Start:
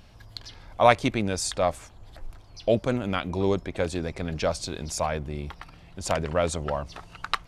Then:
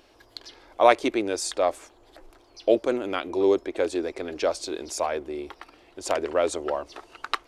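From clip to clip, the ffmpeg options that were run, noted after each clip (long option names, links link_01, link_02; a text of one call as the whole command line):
ffmpeg -i in.wav -af "lowshelf=frequency=230:width_type=q:width=3:gain=-13.5,volume=-1dB" out.wav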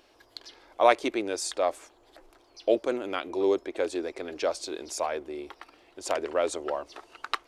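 ffmpeg -i in.wav -af "lowshelf=frequency=200:gain=-6.5,volume=-2.5dB" out.wav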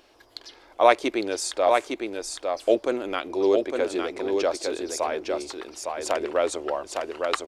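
ffmpeg -i in.wav -af "aecho=1:1:858:0.596,volume=3dB" out.wav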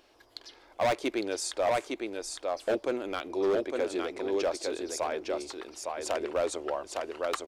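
ffmpeg -i in.wav -af "asoftclip=type=hard:threshold=-17.5dB,volume=-4.5dB" out.wav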